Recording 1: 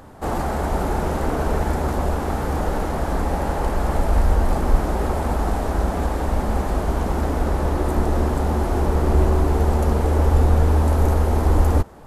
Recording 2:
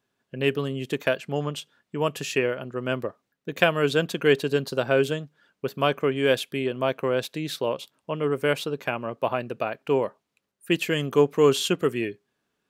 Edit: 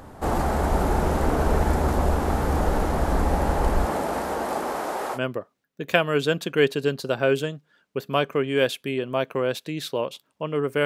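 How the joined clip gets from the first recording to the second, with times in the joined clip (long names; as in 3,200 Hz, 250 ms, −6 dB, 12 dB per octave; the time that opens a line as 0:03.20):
recording 1
0:03.84–0:05.19: high-pass filter 190 Hz → 650 Hz
0:05.16: continue with recording 2 from 0:02.84, crossfade 0.06 s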